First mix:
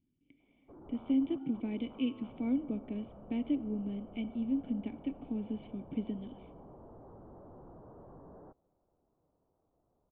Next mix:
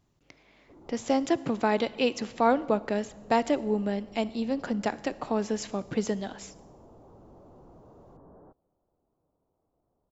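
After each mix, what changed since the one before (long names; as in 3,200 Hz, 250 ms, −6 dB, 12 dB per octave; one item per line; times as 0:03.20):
speech: remove formant resonators in series i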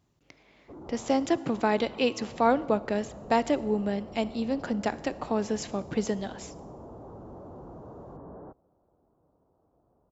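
background +8.5 dB
master: add high-pass filter 40 Hz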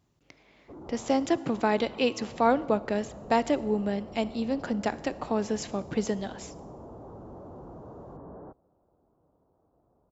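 nothing changed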